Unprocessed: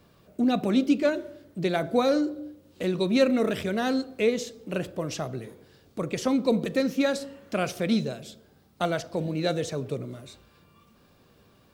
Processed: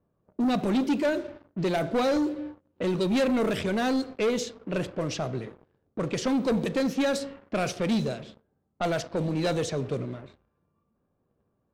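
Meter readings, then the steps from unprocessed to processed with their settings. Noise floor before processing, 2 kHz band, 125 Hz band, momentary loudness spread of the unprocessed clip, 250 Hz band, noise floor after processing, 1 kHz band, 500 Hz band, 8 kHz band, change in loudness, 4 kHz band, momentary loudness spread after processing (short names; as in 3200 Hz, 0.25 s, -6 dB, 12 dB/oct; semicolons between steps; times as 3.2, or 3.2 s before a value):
-60 dBFS, -0.5 dB, +1.0 dB, 16 LU, -1.0 dB, -75 dBFS, +0.5 dB, -1.0 dB, +1.0 dB, -1.0 dB, -0.5 dB, 10 LU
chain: sample leveller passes 3; low-pass opened by the level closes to 1000 Hz, open at -14.5 dBFS; gain -8.5 dB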